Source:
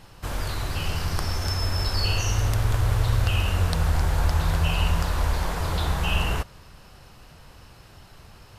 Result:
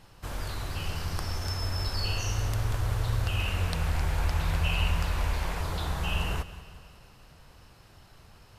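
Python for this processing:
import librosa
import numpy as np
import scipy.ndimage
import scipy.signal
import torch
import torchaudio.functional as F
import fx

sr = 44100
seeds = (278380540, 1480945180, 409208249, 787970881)

y = fx.peak_eq(x, sr, hz=2400.0, db=6.5, octaves=0.65, at=(3.39, 5.62))
y = fx.echo_feedback(y, sr, ms=185, feedback_pct=58, wet_db=-16.0)
y = y * librosa.db_to_amplitude(-6.0)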